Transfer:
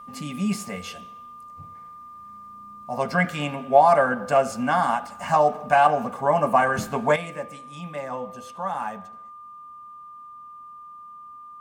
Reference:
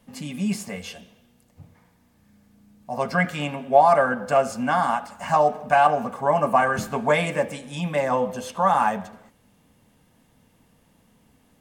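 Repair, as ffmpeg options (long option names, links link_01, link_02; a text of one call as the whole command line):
ffmpeg -i in.wav -af "bandreject=frequency=1200:width=30,asetnsamples=nb_out_samples=441:pad=0,asendcmd='7.16 volume volume 9.5dB',volume=0dB" out.wav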